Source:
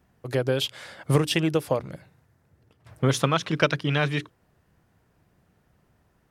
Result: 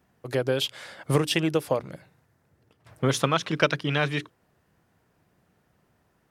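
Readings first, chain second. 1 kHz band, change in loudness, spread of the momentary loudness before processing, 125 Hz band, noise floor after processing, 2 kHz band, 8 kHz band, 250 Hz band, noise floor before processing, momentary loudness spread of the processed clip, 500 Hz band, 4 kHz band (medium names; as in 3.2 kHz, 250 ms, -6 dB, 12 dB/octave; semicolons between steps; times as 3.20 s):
0.0 dB, -1.0 dB, 8 LU, -3.0 dB, -69 dBFS, 0.0 dB, 0.0 dB, -1.5 dB, -67 dBFS, 8 LU, -0.5 dB, 0.0 dB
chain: bass shelf 91 Hz -10.5 dB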